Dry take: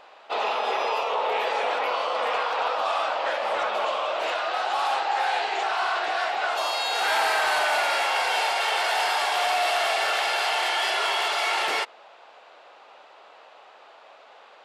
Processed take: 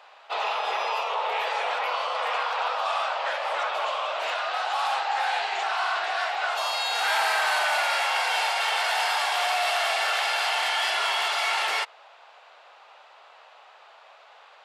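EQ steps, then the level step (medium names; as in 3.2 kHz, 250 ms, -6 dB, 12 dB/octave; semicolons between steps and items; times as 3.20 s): high-pass 680 Hz 12 dB/octave; 0.0 dB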